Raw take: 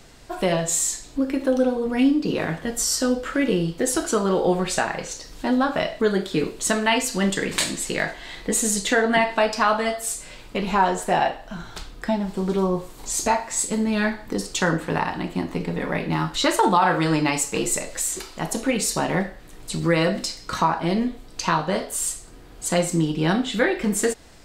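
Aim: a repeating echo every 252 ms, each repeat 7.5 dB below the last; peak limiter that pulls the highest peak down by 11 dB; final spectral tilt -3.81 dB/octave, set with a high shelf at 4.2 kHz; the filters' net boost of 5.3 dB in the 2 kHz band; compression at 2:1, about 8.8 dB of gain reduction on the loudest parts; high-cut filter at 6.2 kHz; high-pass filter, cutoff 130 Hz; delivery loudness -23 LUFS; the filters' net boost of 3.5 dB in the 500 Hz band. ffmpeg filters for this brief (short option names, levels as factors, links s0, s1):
-af "highpass=130,lowpass=6200,equalizer=f=500:t=o:g=4,equalizer=f=2000:t=o:g=7,highshelf=f=4200:g=-3.5,acompressor=threshold=0.0398:ratio=2,alimiter=limit=0.106:level=0:latency=1,aecho=1:1:252|504|756|1008|1260:0.422|0.177|0.0744|0.0312|0.0131,volume=2.11"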